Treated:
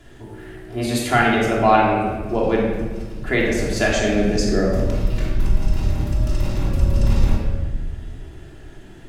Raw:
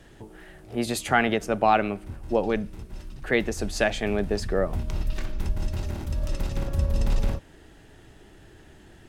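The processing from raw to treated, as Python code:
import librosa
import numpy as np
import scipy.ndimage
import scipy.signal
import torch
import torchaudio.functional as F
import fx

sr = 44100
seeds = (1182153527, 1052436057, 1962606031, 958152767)

y = fx.graphic_eq_15(x, sr, hz=(250, 1000, 6300), db=(5, -7, 10), at=(3.92, 4.8))
y = fx.room_shoebox(y, sr, seeds[0], volume_m3=1200.0, walls='mixed', distance_m=3.1)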